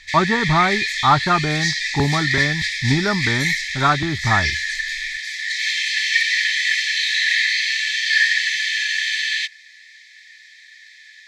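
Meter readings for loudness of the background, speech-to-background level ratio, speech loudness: −19.5 LKFS, −1.0 dB, −20.5 LKFS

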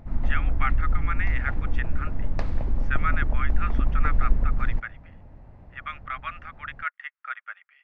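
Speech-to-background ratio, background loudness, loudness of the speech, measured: −4.5 dB, −29.5 LKFS, −34.0 LKFS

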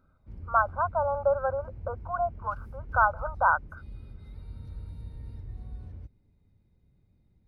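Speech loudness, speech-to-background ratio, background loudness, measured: −28.0 LKFS, 15.5 dB, −43.5 LKFS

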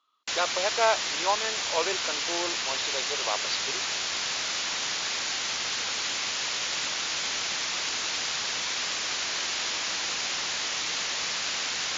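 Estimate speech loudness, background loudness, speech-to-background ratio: −31.0 LKFS, −27.5 LKFS, −3.5 dB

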